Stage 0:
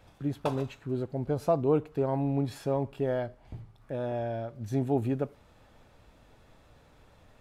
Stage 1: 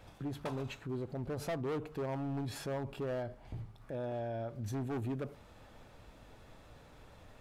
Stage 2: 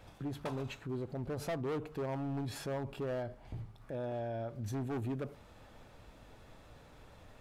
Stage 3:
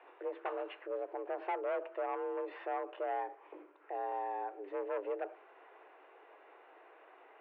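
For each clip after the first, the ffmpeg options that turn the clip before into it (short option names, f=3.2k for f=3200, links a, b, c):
-af "volume=27dB,asoftclip=hard,volume=-27dB,alimiter=level_in=11dB:limit=-24dB:level=0:latency=1:release=47,volume=-11dB,bandreject=f=72.4:t=h:w=4,bandreject=f=144.8:t=h:w=4,bandreject=f=217.2:t=h:w=4,volume=2dB"
-af anull
-af "highpass=f=180:t=q:w=0.5412,highpass=f=180:t=q:w=1.307,lowpass=f=2.5k:t=q:w=0.5176,lowpass=f=2.5k:t=q:w=0.7071,lowpass=f=2.5k:t=q:w=1.932,afreqshift=190,volume=1dB"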